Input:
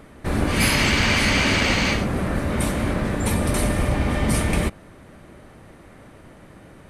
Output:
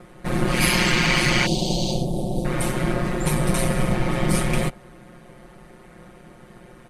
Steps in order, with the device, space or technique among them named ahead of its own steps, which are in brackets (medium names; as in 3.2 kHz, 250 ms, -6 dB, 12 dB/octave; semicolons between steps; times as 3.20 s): 1.46–2.45 s: Chebyshev band-stop 750–3500 Hz, order 3; ring-modulated robot voice (ring modulator 62 Hz; comb 5.6 ms, depth 96%)